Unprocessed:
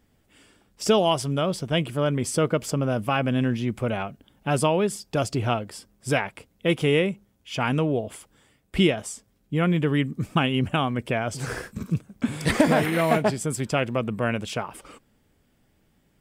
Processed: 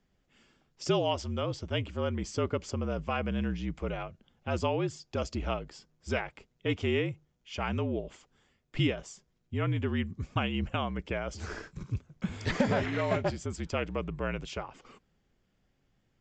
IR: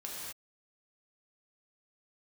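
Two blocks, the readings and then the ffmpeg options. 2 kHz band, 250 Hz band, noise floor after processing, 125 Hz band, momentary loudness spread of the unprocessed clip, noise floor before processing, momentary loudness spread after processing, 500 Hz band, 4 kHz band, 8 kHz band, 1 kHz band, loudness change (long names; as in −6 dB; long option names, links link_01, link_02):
−8.0 dB, −9.0 dB, −74 dBFS, −7.0 dB, 11 LU, −66 dBFS, 12 LU, −8.5 dB, −8.5 dB, −13.0 dB, −9.0 dB, −8.5 dB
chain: -af "aresample=16000,aresample=44100,afreqshift=-51,volume=-8dB"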